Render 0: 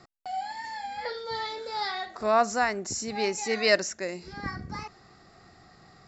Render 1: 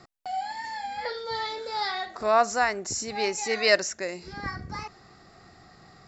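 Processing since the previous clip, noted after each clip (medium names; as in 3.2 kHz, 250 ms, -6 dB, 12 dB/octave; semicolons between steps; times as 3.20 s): dynamic bell 220 Hz, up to -6 dB, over -43 dBFS, Q 1.1; trim +2 dB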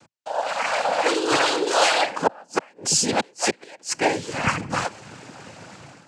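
inverted gate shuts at -18 dBFS, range -35 dB; level rider gain up to 12 dB; noise-vocoded speech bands 8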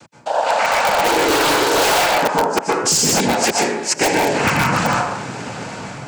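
plate-style reverb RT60 0.75 s, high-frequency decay 0.5×, pre-delay 110 ms, DRR -1.5 dB; in parallel at -3 dB: integer overflow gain 11.5 dB; on the sum: compression 3:1, threshold -19 dBFS, peak gain reduction 7 dB; trim +4.5 dB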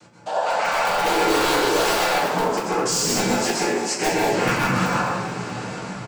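peak limiter -10.5 dBFS, peak gain reduction 6 dB; on a send: frequency-shifting echo 210 ms, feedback 49%, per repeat +41 Hz, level -12 dB; on the sum: simulated room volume 47 m³, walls mixed, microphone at 0.94 m; trim -8 dB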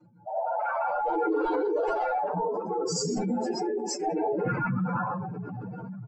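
spectral contrast enhancement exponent 3.1; trim -6.5 dB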